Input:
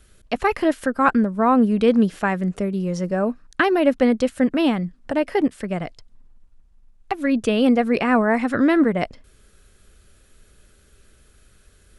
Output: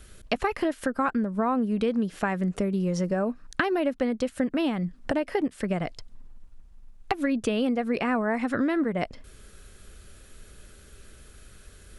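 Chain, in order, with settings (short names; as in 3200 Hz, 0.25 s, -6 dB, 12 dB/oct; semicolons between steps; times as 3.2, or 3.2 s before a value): compressor 6:1, threshold -28 dBFS, peak gain reduction 15.5 dB; gain +4.5 dB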